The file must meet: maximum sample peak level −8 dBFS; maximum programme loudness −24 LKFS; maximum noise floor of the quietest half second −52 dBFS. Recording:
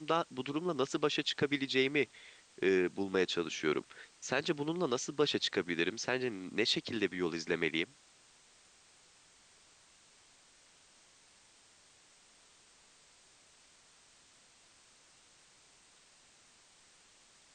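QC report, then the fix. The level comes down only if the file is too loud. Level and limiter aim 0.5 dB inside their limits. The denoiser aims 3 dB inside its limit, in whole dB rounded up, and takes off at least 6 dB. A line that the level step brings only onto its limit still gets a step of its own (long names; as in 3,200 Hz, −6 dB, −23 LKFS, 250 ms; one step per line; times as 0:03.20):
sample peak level −15.5 dBFS: in spec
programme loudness −34.0 LKFS: in spec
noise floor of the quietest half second −64 dBFS: in spec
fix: no processing needed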